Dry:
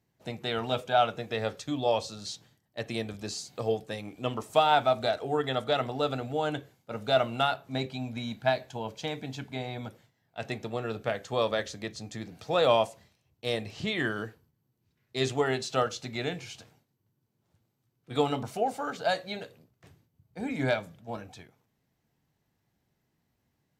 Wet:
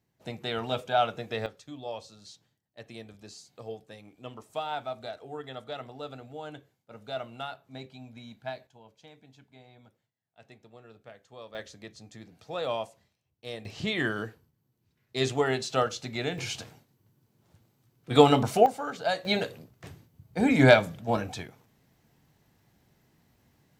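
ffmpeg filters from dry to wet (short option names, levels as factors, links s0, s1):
-af "asetnsamples=n=441:p=0,asendcmd='1.46 volume volume -11dB;8.67 volume volume -18.5dB;11.55 volume volume -8.5dB;13.65 volume volume 1dB;16.38 volume volume 9dB;18.66 volume volume -0.5dB;19.25 volume volume 10.5dB',volume=0.891"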